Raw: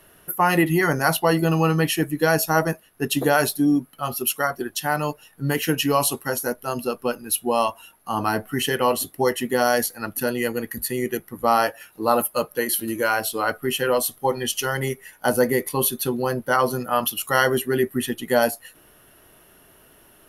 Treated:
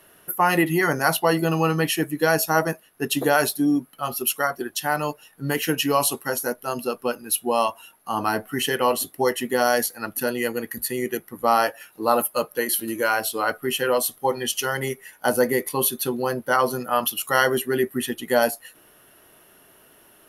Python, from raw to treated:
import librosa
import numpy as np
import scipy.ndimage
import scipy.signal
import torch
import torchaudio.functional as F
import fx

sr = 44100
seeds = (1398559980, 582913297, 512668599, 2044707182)

y = fx.low_shelf(x, sr, hz=110.0, db=-11.5)